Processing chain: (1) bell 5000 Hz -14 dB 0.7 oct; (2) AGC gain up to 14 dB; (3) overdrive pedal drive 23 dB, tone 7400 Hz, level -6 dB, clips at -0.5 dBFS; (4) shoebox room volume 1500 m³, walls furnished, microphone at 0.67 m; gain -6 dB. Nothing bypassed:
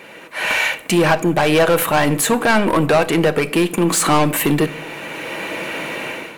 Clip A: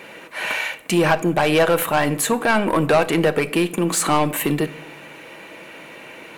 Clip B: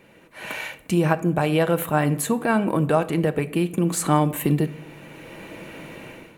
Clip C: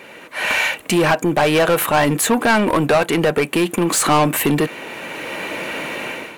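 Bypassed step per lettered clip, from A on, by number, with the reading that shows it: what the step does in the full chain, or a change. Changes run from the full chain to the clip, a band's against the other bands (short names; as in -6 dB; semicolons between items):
2, momentary loudness spread change +10 LU; 3, crest factor change +5.0 dB; 4, echo-to-direct -11.5 dB to none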